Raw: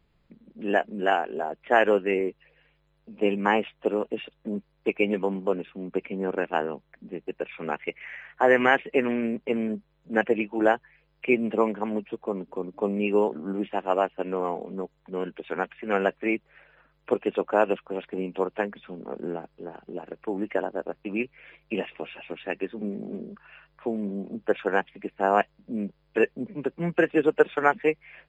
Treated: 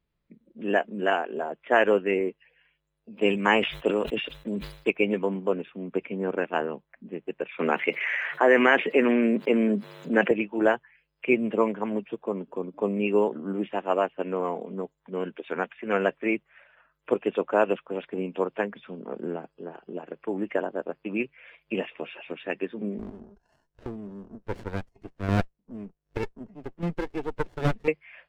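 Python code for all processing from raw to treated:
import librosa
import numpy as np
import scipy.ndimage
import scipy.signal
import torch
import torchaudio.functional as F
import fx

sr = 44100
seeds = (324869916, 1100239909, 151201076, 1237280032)

y = fx.chain(x, sr, fx.high_shelf(hz=2700.0, db=11.0),
    fx.sustainer(db_per_s=100.0), at=(3.17, 4.91))
y = fx.chain(y, sr, fx.highpass(hz=190.0, slope=24),
    fx.env_flatten(amount_pct=50), at=(7.59, 10.31))
y = fx.chain(y, sr, fx.chopper(hz=1.3, depth_pct=60, duty_pct=15),
    fx.running_max(window=33), at=(22.98, 27.88))
y = fx.noise_reduce_blind(y, sr, reduce_db=12)
y = fx.notch(y, sr, hz=790.0, q=12.0)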